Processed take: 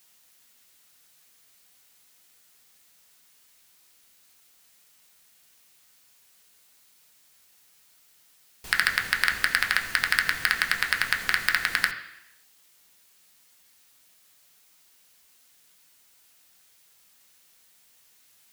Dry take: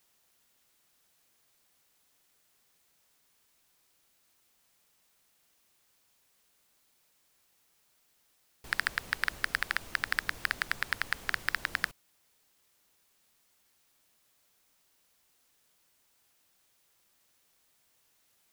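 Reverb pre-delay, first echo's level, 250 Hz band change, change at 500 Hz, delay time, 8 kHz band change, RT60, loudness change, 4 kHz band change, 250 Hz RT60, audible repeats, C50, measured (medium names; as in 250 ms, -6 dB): 3 ms, no echo, +5.0 dB, +4.0 dB, no echo, +10.5 dB, 0.85 s, +8.5 dB, +10.0 dB, 0.85 s, no echo, 9.5 dB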